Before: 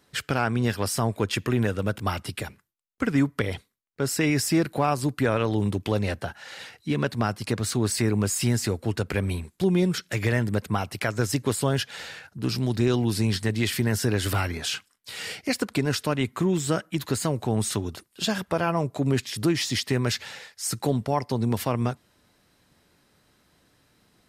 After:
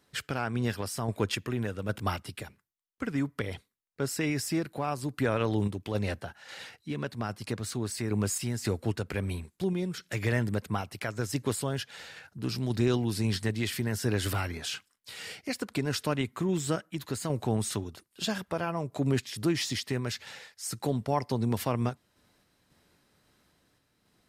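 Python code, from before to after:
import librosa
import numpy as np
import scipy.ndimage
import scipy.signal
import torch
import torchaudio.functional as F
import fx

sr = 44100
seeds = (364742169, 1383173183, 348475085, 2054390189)

y = fx.tremolo_random(x, sr, seeds[0], hz=3.7, depth_pct=55)
y = F.gain(torch.from_numpy(y), -3.0).numpy()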